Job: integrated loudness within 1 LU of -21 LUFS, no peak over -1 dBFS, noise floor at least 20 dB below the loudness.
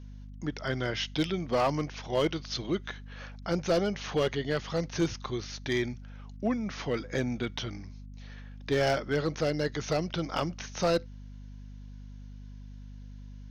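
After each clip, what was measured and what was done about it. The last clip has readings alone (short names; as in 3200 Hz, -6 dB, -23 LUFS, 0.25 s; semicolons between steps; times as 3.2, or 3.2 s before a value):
clipped 0.7%; flat tops at -20.0 dBFS; hum 50 Hz; harmonics up to 250 Hz; hum level -42 dBFS; loudness -31.0 LUFS; peak -20.0 dBFS; loudness target -21.0 LUFS
-> clip repair -20 dBFS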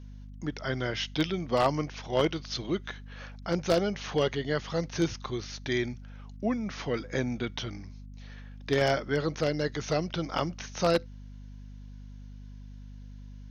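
clipped 0.0%; hum 50 Hz; harmonics up to 250 Hz; hum level -42 dBFS
-> de-hum 50 Hz, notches 5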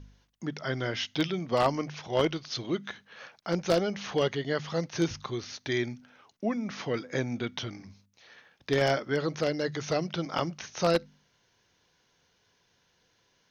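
hum none; loudness -30.5 LUFS; peak -11.0 dBFS; loudness target -21.0 LUFS
-> gain +9.5 dB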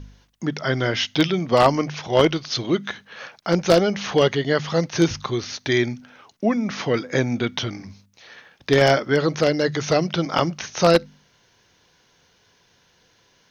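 loudness -21.0 LUFS; peak -1.5 dBFS; noise floor -61 dBFS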